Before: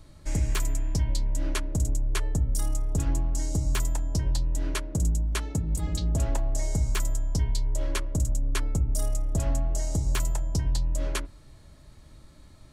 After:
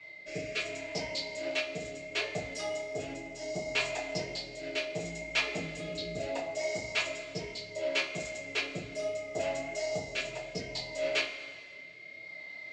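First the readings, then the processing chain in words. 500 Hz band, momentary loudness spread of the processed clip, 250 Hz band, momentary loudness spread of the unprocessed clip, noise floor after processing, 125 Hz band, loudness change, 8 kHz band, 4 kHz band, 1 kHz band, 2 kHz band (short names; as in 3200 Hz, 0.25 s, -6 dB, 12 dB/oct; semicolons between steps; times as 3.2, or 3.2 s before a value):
+6.0 dB, 10 LU, -8.0 dB, 2 LU, -48 dBFS, -19.0 dB, -5.5 dB, -9.5 dB, +4.0 dB, -1.5 dB, +7.5 dB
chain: whine 2100 Hz -48 dBFS; flange 1.3 Hz, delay 0.8 ms, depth 6.2 ms, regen -39%; rotary speaker horn 0.7 Hz; reverse; upward compressor, threshold -49 dBFS; reverse; speaker cabinet 470–5000 Hz, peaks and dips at 480 Hz +3 dB, 690 Hz +7 dB, 990 Hz -9 dB, 1500 Hz -6 dB, 2500 Hz +9 dB, 4600 Hz +4 dB; two-slope reverb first 0.25 s, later 2 s, from -18 dB, DRR -8.5 dB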